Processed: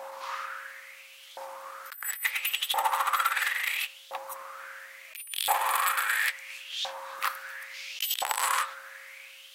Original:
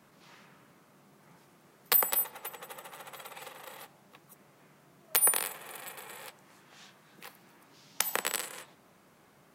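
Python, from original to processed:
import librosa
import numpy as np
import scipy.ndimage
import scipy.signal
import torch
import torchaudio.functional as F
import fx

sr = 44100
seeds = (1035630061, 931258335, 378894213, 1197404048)

y = x + 10.0 ** (-52.0 / 20.0) * np.sin(2.0 * np.pi * 540.0 * np.arange(len(x)) / sr)
y = fx.over_compress(y, sr, threshold_db=-41.0, ratio=-1.0)
y = fx.filter_lfo_highpass(y, sr, shape='saw_up', hz=0.73, low_hz=780.0, high_hz=3500.0, q=5.7)
y = y * librosa.db_to_amplitude(7.5)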